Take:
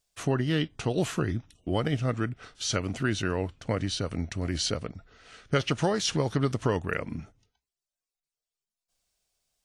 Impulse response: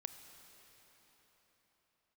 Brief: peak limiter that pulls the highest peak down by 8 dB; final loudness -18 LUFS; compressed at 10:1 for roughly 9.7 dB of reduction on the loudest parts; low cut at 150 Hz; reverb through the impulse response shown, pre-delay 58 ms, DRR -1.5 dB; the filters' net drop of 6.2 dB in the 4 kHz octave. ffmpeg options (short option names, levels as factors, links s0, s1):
-filter_complex "[0:a]highpass=150,equalizer=f=4000:t=o:g=-8.5,acompressor=threshold=0.0282:ratio=10,alimiter=level_in=1.33:limit=0.0631:level=0:latency=1,volume=0.75,asplit=2[s0][s1];[1:a]atrim=start_sample=2205,adelay=58[s2];[s1][s2]afir=irnorm=-1:irlink=0,volume=1.78[s3];[s0][s3]amix=inputs=2:normalize=0,volume=7.94"